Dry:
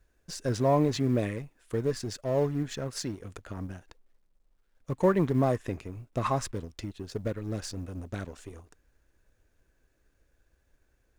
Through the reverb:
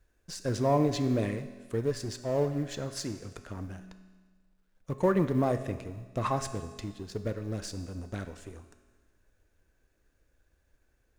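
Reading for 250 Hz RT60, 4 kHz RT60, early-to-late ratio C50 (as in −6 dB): 1.5 s, 1.5 s, 11.0 dB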